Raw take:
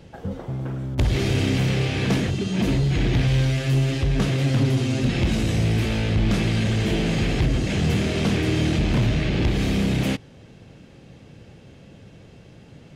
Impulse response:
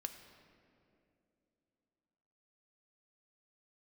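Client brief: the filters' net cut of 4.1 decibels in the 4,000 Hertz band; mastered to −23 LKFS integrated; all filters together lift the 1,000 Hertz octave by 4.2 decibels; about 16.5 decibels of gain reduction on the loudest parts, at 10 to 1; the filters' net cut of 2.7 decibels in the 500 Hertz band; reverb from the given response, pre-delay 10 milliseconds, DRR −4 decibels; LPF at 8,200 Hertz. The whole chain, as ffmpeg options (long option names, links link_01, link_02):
-filter_complex "[0:a]lowpass=8200,equalizer=frequency=500:width_type=o:gain=-5.5,equalizer=frequency=1000:width_type=o:gain=8,equalizer=frequency=4000:width_type=o:gain=-6,acompressor=threshold=-34dB:ratio=10,asplit=2[link_01][link_02];[1:a]atrim=start_sample=2205,adelay=10[link_03];[link_02][link_03]afir=irnorm=-1:irlink=0,volume=6.5dB[link_04];[link_01][link_04]amix=inputs=2:normalize=0,volume=10dB"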